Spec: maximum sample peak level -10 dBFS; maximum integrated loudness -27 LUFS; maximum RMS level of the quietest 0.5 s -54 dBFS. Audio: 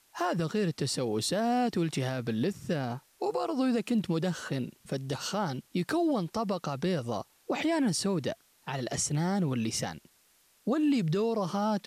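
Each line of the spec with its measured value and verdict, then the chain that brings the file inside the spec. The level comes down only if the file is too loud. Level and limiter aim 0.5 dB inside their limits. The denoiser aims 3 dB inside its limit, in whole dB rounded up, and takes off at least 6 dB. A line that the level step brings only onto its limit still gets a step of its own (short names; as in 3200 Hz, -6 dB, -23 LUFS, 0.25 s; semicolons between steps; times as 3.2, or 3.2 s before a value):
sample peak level -19.5 dBFS: OK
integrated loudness -31.0 LUFS: OK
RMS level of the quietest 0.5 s -66 dBFS: OK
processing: none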